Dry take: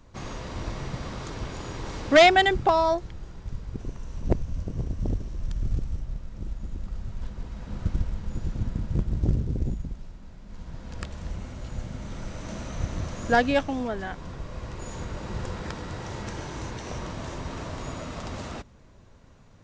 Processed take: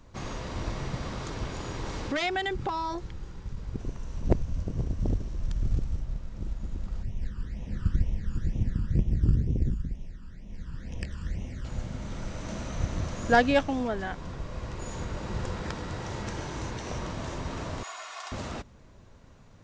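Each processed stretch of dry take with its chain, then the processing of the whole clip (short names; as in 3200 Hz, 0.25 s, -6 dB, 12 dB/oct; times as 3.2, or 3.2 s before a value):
2.06–3.57 notch 660 Hz, Q 5.3 + compressor 3:1, threshold -29 dBFS
7.03–11.65 bell 1800 Hz +6 dB 0.28 oct + phaser stages 12, 2.1 Hz, lowest notch 650–1500 Hz
17.83–18.32 HPF 800 Hz 24 dB/oct + comb 2.8 ms, depth 67%
whole clip: dry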